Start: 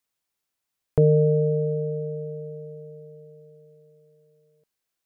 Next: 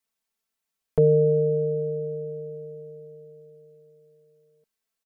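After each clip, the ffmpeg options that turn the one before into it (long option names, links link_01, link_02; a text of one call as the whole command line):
ffmpeg -i in.wav -af "aecho=1:1:4.5:0.87,volume=-4dB" out.wav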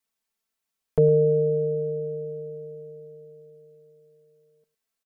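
ffmpeg -i in.wav -af "aecho=1:1:108:0.126" out.wav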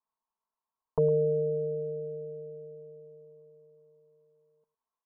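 ffmpeg -i in.wav -af "lowpass=frequency=1000:width_type=q:width=12,volume=-8.5dB" out.wav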